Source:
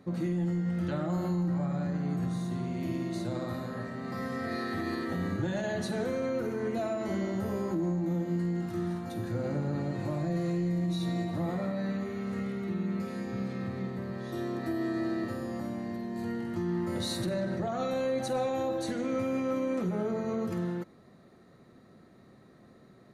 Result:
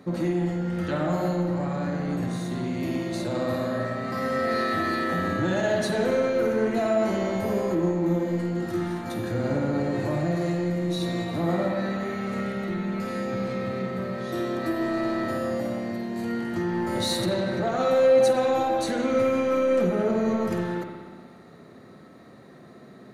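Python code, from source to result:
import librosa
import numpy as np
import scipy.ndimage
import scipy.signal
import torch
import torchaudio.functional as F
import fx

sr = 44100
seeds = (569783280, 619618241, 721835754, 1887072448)

p1 = fx.highpass(x, sr, hz=160.0, slope=6)
p2 = np.clip(10.0 ** (31.5 / 20.0) * p1, -1.0, 1.0) / 10.0 ** (31.5 / 20.0)
p3 = p1 + (p2 * librosa.db_to_amplitude(-3.5))
p4 = fx.rev_spring(p3, sr, rt60_s=1.6, pass_ms=(59,), chirp_ms=30, drr_db=2.0)
y = p4 * librosa.db_to_amplitude(3.5)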